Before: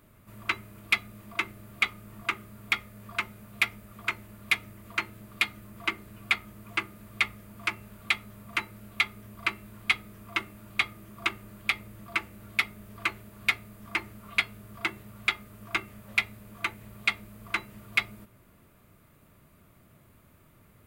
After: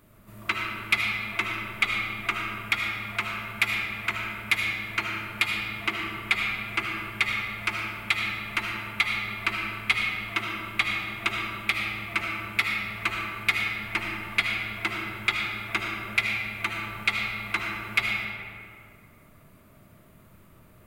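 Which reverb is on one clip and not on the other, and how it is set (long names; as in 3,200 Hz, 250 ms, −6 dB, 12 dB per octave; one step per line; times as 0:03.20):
comb and all-pass reverb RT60 2.3 s, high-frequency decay 0.55×, pre-delay 35 ms, DRR −0.5 dB
level +1 dB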